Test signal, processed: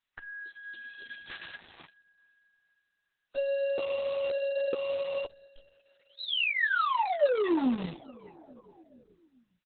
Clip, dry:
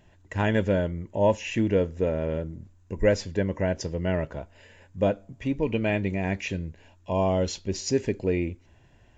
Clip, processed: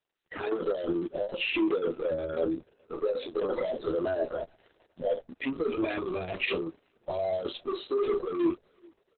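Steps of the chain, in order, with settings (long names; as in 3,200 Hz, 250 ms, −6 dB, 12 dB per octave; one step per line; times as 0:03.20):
downsampling to 32,000 Hz
noise in a band 1,200–5,100 Hz −60 dBFS
four-pole ladder high-pass 330 Hz, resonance 50%
dynamic equaliser 1,000 Hz, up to −4 dB, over −48 dBFS, Q 1.7
in parallel at −8 dB: fuzz pedal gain 55 dB, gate −57 dBFS
on the sum: repeating echo 423 ms, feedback 55%, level −23 dB
brickwall limiter −20 dBFS
high-shelf EQ 3,800 Hz −8.5 dB
notch filter 2,200 Hz, Q 12
double-tracking delay 12 ms −4.5 dB
noise reduction from a noise print of the clip's start 16 dB
level −4.5 dB
Opus 6 kbit/s 48,000 Hz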